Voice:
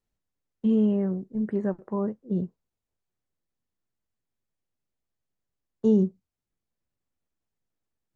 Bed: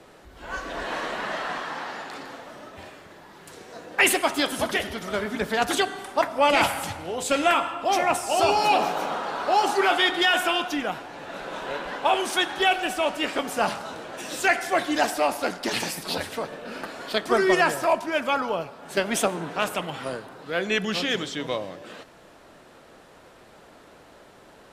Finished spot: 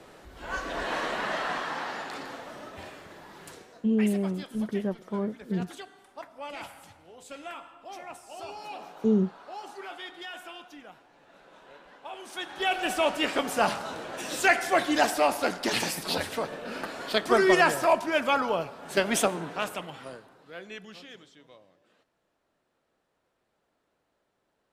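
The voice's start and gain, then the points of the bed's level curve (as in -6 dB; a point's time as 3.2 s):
3.20 s, -2.5 dB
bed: 3.49 s -0.5 dB
3.95 s -20 dB
12.1 s -20 dB
12.91 s -0.5 dB
19.17 s -0.5 dB
21.46 s -25.5 dB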